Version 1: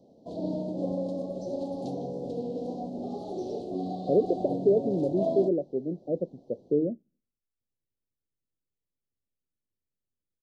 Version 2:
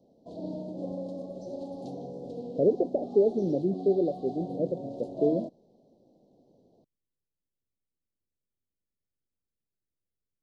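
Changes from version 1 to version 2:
speech: entry -1.50 s; background -5.0 dB

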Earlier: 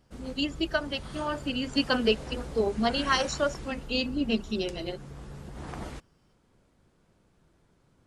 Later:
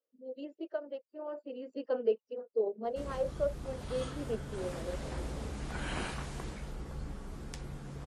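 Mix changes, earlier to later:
speech: add band-pass filter 500 Hz, Q 4; background: entry +2.85 s

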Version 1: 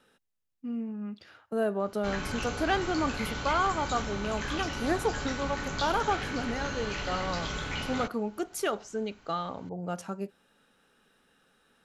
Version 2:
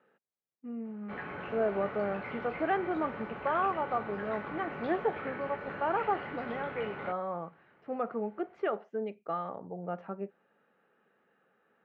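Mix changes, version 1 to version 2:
background: entry -0.95 s; master: add cabinet simulation 210–2000 Hz, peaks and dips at 270 Hz -8 dB, 990 Hz -4 dB, 1.5 kHz -5 dB

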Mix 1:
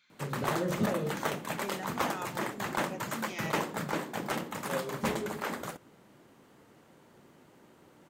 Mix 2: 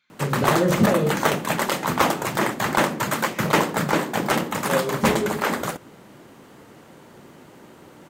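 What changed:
speech: add treble shelf 3.6 kHz -7 dB; background +12.0 dB

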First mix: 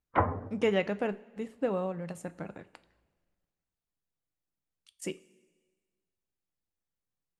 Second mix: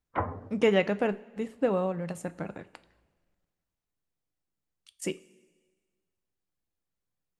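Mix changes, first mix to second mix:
speech +4.0 dB; background -4.0 dB

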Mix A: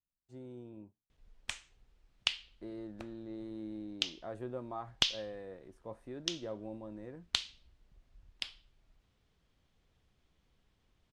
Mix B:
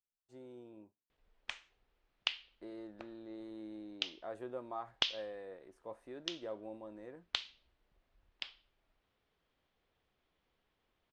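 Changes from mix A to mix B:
background: add distance through air 150 m; master: add tone controls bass -13 dB, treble -1 dB

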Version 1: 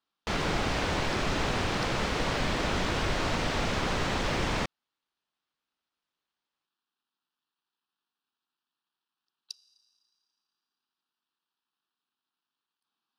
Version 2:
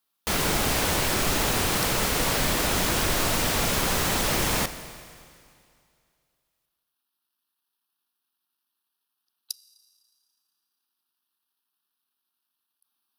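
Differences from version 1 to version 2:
background: send on; master: remove distance through air 140 m

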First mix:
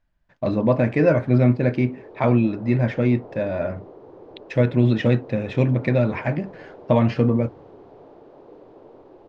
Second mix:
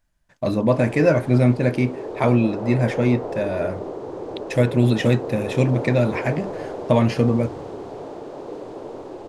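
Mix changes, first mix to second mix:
background +11.5 dB; master: remove distance through air 200 m

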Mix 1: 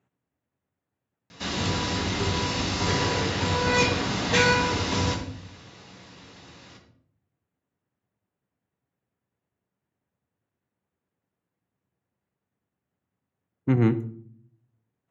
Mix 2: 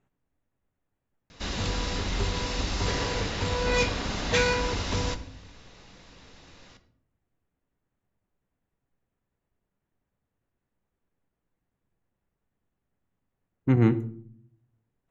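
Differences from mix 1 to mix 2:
background: send -10.5 dB; master: remove high-pass 85 Hz 24 dB/octave

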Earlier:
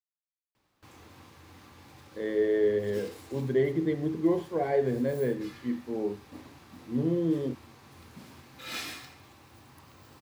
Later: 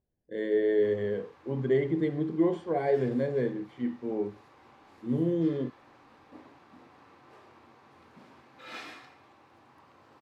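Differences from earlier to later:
speech: entry -1.85 s; background: add band-pass filter 770 Hz, Q 0.57

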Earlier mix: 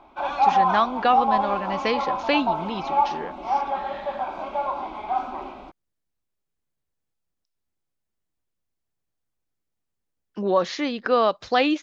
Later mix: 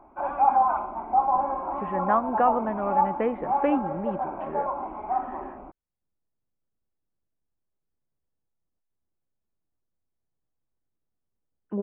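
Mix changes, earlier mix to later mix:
speech: entry +1.35 s; master: add Gaussian low-pass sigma 5.5 samples

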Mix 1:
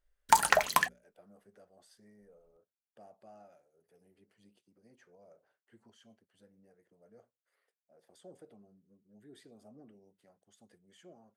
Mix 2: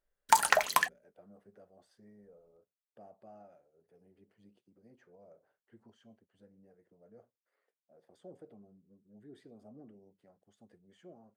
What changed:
speech: add tilt EQ -3.5 dB/octave; master: add bass shelf 230 Hz -9.5 dB

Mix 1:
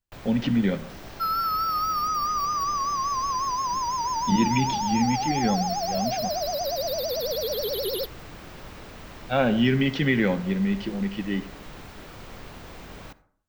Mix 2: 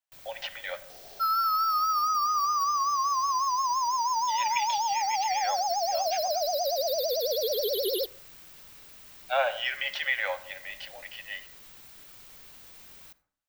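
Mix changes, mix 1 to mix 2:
speech: add Chebyshev high-pass 570 Hz, order 6; first sound: add pre-emphasis filter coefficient 0.9

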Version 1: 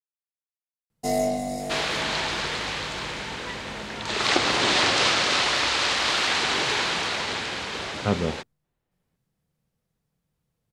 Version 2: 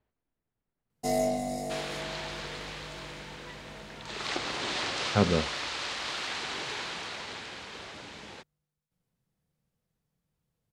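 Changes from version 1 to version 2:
speech: entry -2.90 s; first sound -3.5 dB; second sound -11.5 dB

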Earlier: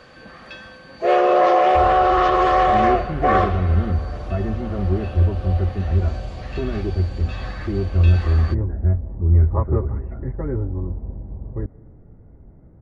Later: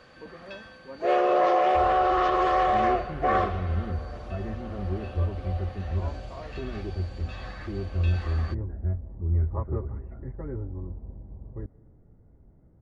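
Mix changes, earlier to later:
speech +6.5 dB; first sound -6.5 dB; second sound -10.0 dB

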